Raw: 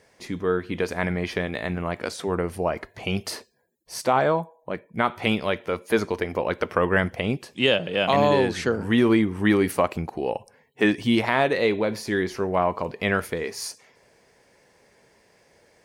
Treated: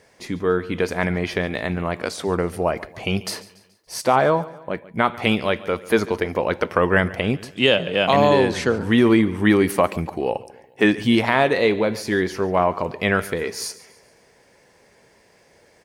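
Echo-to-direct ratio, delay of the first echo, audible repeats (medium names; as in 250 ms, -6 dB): -18.0 dB, 142 ms, 3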